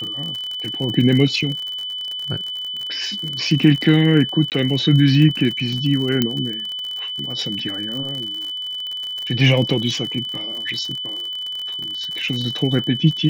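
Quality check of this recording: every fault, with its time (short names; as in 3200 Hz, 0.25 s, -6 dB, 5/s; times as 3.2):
crackle 51/s -25 dBFS
tone 3000 Hz -25 dBFS
4.5–4.52 gap 18 ms
6.22 pop -4 dBFS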